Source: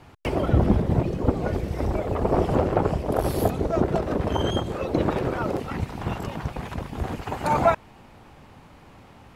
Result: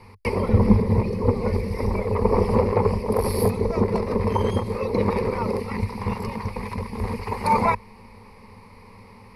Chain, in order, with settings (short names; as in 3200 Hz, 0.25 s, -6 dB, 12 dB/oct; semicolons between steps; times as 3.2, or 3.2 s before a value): ripple EQ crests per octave 0.89, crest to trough 16 dB; gain -1 dB